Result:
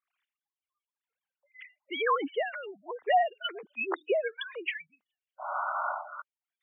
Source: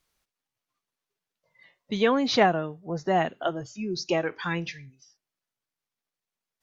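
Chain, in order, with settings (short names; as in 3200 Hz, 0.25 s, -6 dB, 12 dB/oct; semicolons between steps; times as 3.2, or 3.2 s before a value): sine-wave speech; limiter -18 dBFS, peak gain reduction 9.5 dB; bell 240 Hz -3.5 dB 0.41 oct; painted sound noise, 5.38–6.22, 570–1500 Hz -35 dBFS; tilt +3.5 dB/oct; spectral gate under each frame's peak -15 dB strong; photocell phaser 1.1 Hz; gain +4 dB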